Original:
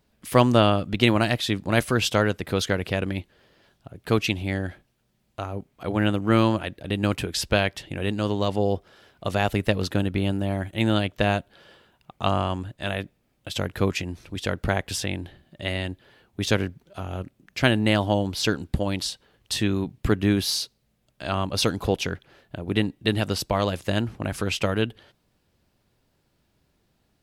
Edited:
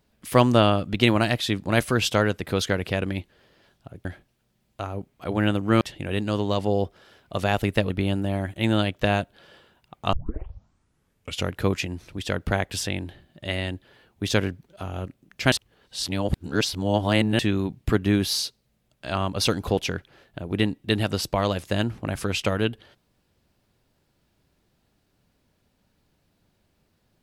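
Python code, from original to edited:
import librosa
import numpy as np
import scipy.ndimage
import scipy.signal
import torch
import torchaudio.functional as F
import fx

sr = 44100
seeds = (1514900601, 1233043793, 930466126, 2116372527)

y = fx.edit(x, sr, fx.cut(start_s=4.05, length_s=0.59),
    fx.cut(start_s=6.4, length_s=1.32),
    fx.cut(start_s=9.81, length_s=0.26),
    fx.tape_start(start_s=12.3, length_s=1.38),
    fx.reverse_span(start_s=17.69, length_s=1.87), tone=tone)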